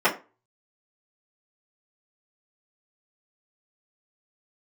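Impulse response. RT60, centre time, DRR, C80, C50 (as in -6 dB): 0.30 s, 17 ms, -10.5 dB, 18.5 dB, 13.0 dB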